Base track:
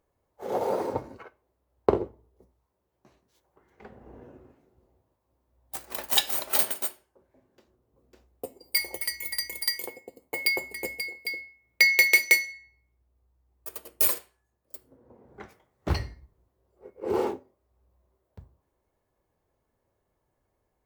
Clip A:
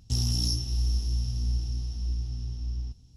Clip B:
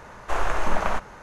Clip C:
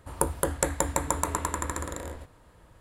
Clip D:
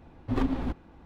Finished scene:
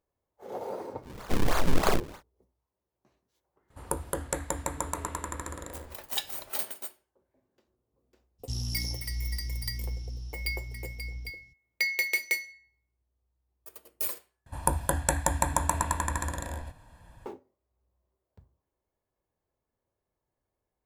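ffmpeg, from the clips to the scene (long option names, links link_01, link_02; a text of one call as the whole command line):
ffmpeg -i bed.wav -i cue0.wav -i cue1.wav -i cue2.wav -filter_complex "[3:a]asplit=2[link_01][link_02];[0:a]volume=-9dB[link_03];[2:a]acrusher=samples=38:mix=1:aa=0.000001:lfo=1:lforange=60.8:lforate=3.2[link_04];[link_02]aecho=1:1:1.2:0.65[link_05];[link_03]asplit=2[link_06][link_07];[link_06]atrim=end=14.464[link_08];[link_05]atrim=end=2.8,asetpts=PTS-STARTPTS,volume=-1dB[link_09];[link_07]atrim=start=17.256[link_10];[link_04]atrim=end=1.22,asetpts=PTS-STARTPTS,volume=-0.5dB,afade=type=in:duration=0.1,afade=type=out:start_time=1.12:duration=0.1,adelay=1010[link_11];[link_01]atrim=end=2.8,asetpts=PTS-STARTPTS,volume=-5.5dB,afade=type=in:duration=0.004:curve=hsin,afade=type=out:start_time=2.796:duration=0.004:curve=hsin,adelay=3700[link_12];[1:a]atrim=end=3.16,asetpts=PTS-STARTPTS,volume=-7dB,afade=type=in:duration=0.02,afade=type=out:start_time=3.14:duration=0.02,adelay=8380[link_13];[link_08][link_09]acrossfade=duration=0.004:curve1=hsin:curve2=hsin[link_14];[link_14][link_10]acrossfade=duration=0.004:curve1=hsin:curve2=hsin[link_15];[link_15][link_11][link_12][link_13]amix=inputs=4:normalize=0" out.wav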